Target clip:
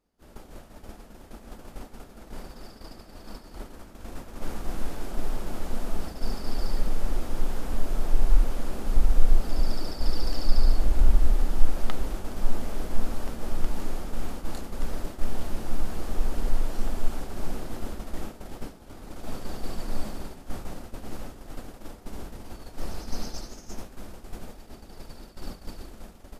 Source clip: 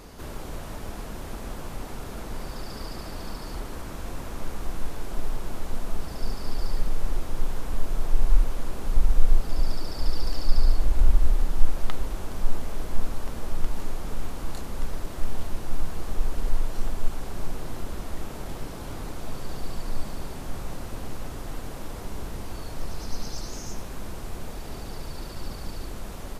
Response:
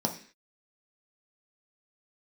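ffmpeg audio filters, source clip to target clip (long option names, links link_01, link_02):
-filter_complex "[0:a]agate=range=-33dB:threshold=-25dB:ratio=3:detection=peak,asplit=2[link_01][link_02];[1:a]atrim=start_sample=2205,lowpass=3800[link_03];[link_02][link_03]afir=irnorm=-1:irlink=0,volume=-21dB[link_04];[link_01][link_04]amix=inputs=2:normalize=0"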